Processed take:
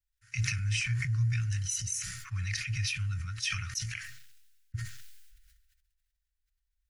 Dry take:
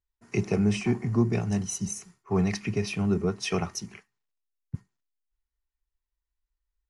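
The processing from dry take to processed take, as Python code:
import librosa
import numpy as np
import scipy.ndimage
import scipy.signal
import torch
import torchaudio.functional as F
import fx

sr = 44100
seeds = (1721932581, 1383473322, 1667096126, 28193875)

y = scipy.signal.sosfilt(scipy.signal.cheby1(4, 1.0, [120.0, 1500.0], 'bandstop', fs=sr, output='sos'), x)
y = fx.sustainer(y, sr, db_per_s=38.0)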